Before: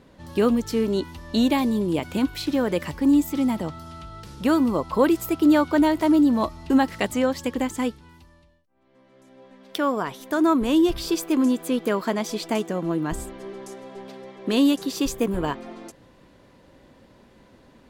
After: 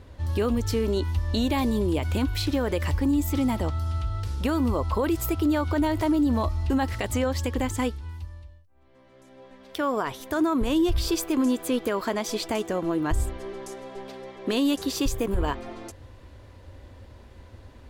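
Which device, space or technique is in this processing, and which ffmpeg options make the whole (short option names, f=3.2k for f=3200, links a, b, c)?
car stereo with a boomy subwoofer: -af "lowshelf=f=120:t=q:w=3:g=10,alimiter=limit=-17.5dB:level=0:latency=1:release=72,volume=1.5dB"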